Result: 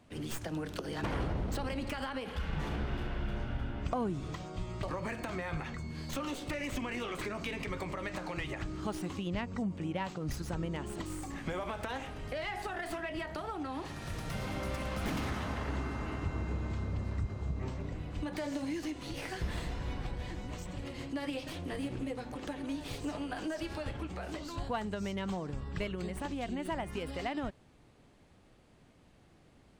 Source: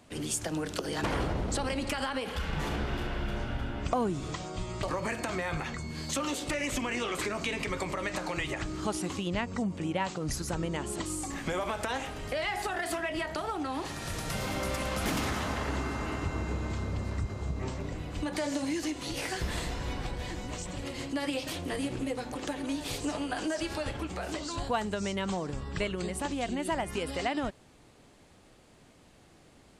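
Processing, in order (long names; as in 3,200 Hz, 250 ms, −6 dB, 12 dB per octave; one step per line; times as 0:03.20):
stylus tracing distortion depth 0.086 ms
bass and treble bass +4 dB, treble −5 dB
notch filter 7,200 Hz, Q 24
level −5.5 dB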